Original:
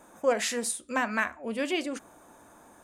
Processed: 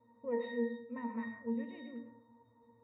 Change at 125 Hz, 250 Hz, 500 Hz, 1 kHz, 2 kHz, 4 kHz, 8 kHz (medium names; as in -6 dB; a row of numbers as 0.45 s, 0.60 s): no reading, -4.5 dB, -9.0 dB, -15.0 dB, -18.0 dB, under -20 dB, under -40 dB